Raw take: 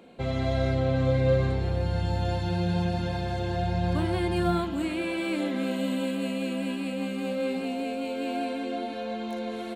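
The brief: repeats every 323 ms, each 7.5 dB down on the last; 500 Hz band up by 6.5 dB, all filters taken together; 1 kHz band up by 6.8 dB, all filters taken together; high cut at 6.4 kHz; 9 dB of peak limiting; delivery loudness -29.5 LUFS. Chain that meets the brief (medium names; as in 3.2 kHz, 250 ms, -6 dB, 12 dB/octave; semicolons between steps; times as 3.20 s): low-pass 6.4 kHz; peaking EQ 500 Hz +5.5 dB; peaking EQ 1 kHz +7.5 dB; peak limiter -17 dBFS; feedback delay 323 ms, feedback 42%, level -7.5 dB; trim -3.5 dB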